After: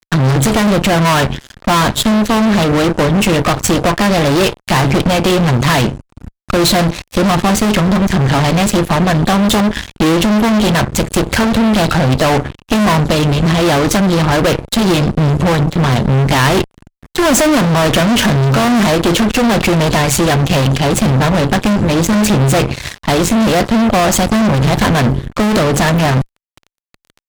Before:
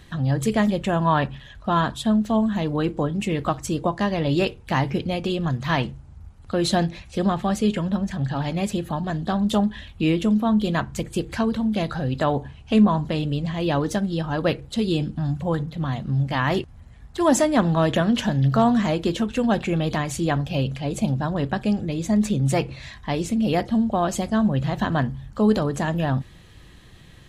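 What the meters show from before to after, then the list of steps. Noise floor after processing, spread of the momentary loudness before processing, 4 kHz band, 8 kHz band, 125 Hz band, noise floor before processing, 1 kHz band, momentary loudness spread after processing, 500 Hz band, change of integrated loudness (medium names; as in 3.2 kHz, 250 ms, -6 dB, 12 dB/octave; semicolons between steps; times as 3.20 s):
-72 dBFS, 7 LU, +15.0 dB, +16.5 dB, +11.0 dB, -46 dBFS, +11.0 dB, 4 LU, +10.5 dB, +10.5 dB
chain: fuzz box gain 31 dB, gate -38 dBFS; Chebyshev shaper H 2 -9 dB, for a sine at -10 dBFS; trim +3.5 dB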